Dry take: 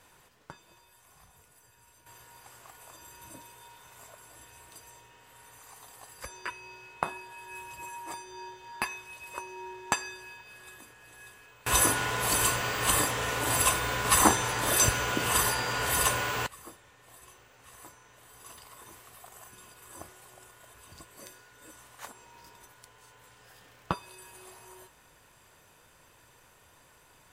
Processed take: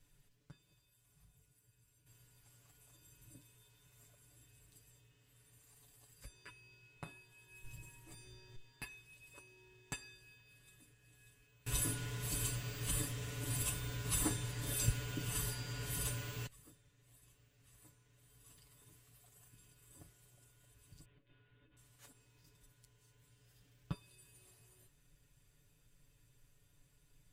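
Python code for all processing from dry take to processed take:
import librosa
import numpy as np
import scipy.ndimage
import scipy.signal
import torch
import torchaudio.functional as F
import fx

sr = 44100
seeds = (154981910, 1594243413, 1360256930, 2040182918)

y = fx.chain(x, sr, fx.halfwave_gain(db=-3.0),
    fx.low_shelf(hz=180.0, db=8.5),
    fx.env_flatten(amount_pct=70), at=(7.64, 8.56))
y = fx.chain(y, sr, fx.steep_lowpass(hz=3500.0, slope=48),
    fx.over_compress(threshold_db=-55.0, ratio=-0.5), at=(21.05, 21.77))
y = fx.tone_stack(y, sr, knobs='10-0-1')
y = y + 0.85 * np.pad(y, (int(7.0 * sr / 1000.0), 0))[:len(y)]
y = y * librosa.db_to_amplitude(5.5)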